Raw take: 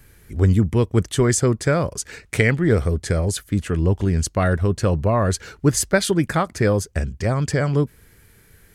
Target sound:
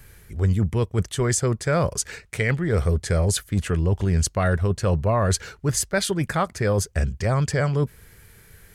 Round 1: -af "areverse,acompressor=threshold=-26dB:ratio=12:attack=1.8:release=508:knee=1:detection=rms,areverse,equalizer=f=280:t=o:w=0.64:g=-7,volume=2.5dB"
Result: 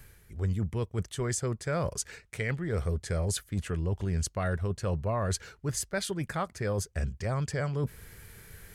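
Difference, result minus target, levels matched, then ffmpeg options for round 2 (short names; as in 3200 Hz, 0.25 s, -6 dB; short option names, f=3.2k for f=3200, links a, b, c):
compressor: peak gain reduction +9 dB
-af "areverse,acompressor=threshold=-16dB:ratio=12:attack=1.8:release=508:knee=1:detection=rms,areverse,equalizer=f=280:t=o:w=0.64:g=-7,volume=2.5dB"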